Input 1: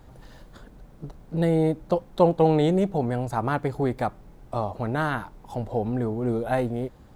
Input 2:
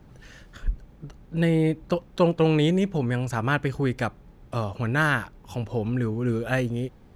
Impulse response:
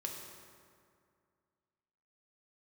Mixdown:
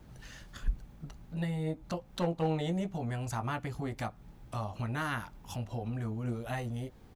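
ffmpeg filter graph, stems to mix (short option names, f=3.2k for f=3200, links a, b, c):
-filter_complex "[0:a]aeval=exprs='clip(val(0),-1,0.251)':c=same,flanger=delay=17:depth=2.1:speed=1.4,volume=-9.5dB,asplit=2[a][b];[1:a]highshelf=f=3.5k:g=7.5,adelay=0.9,volume=-4.5dB[c];[b]apad=whole_len=315452[d];[c][d]sidechaincompress=threshold=-46dB:ratio=4:attack=12:release=175[e];[a][e]amix=inputs=2:normalize=0"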